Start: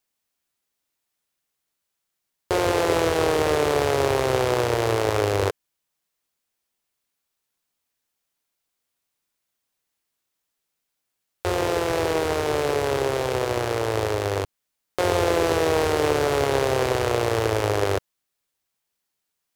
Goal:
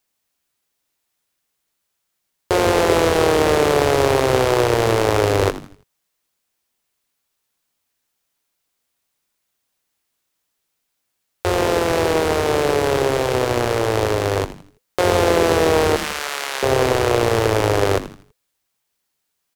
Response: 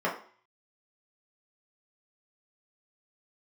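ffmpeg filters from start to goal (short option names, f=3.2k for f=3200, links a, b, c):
-filter_complex "[0:a]asettb=1/sr,asplit=3[a][b][c];[a]atrim=end=15.964[d];[b]atrim=start=15.96:end=16.63,asetpts=PTS-STARTPTS,afade=t=in:d=0.004:c=qsin,afade=t=out:st=0.666:d=0.004:c=qsin,highpass=1.4k[e];[c]atrim=start=16.626[f];[d][e]acrossfade=d=0.004:c1=hsin:c2=qsin[g];[g][f]acrossfade=d=0.004:c1=qsin:c2=hsin,asplit=5[h][i][j][k][l];[i]adelay=82,afreqshift=-130,volume=-13dB[m];[j]adelay=164,afreqshift=-260,volume=-21.2dB[n];[k]adelay=246,afreqshift=-390,volume=-29.4dB[o];[l]adelay=328,afreqshift=-520,volume=-37.5dB[p];[h][m][n][o][p]amix=inputs=5:normalize=0,volume=5dB"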